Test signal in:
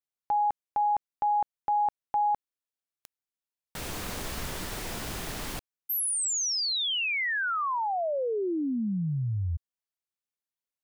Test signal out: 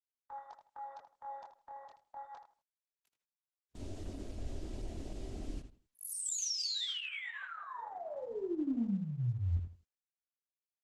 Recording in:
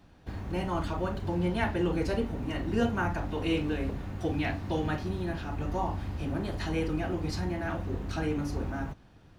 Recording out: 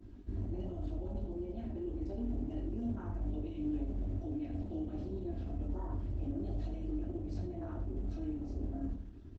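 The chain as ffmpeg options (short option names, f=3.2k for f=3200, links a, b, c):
-filter_complex "[0:a]adynamicequalizer=threshold=0.002:dfrequency=2900:dqfactor=4.3:tfrequency=2900:tqfactor=4.3:attack=5:release=100:ratio=0.4:range=2:mode=boostabove:tftype=bell,aresample=22050,aresample=44100,aecho=1:1:3.1:0.91,areverse,acompressor=threshold=-37dB:ratio=10:attack=2:release=124:knee=1:detection=rms,areverse,aeval=exprs='(mod(28.2*val(0)+1,2)-1)/28.2':c=same,acrossover=split=330|3300[a][b][c];[b]acompressor=threshold=-49dB:ratio=5:attack=0.74:release=174:knee=2.83:detection=peak[d];[a][d][c]amix=inputs=3:normalize=0,afwtdn=0.00501,flanger=delay=20:depth=6.1:speed=0.29,asplit=2[e][f];[f]adelay=80,lowpass=f=4.2k:p=1,volume=-8dB,asplit=2[g][h];[h]adelay=80,lowpass=f=4.2k:p=1,volume=0.22,asplit=2[i][j];[j]adelay=80,lowpass=f=4.2k:p=1,volume=0.22[k];[g][i][k]amix=inputs=3:normalize=0[l];[e][l]amix=inputs=2:normalize=0,volume=7.5dB" -ar 48000 -c:a libopus -b:a 12k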